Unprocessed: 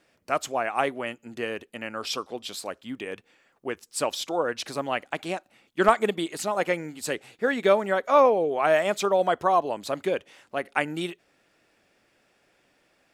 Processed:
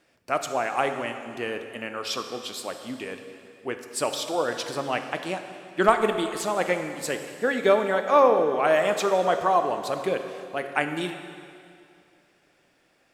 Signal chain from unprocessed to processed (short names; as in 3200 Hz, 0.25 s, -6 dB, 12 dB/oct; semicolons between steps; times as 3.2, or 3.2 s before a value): plate-style reverb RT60 2.4 s, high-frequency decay 0.95×, DRR 6.5 dB